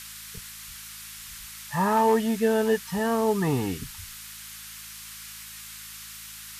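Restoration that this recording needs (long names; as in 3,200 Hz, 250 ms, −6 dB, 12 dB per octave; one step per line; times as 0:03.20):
hum removal 54 Hz, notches 4
noise reduction from a noise print 29 dB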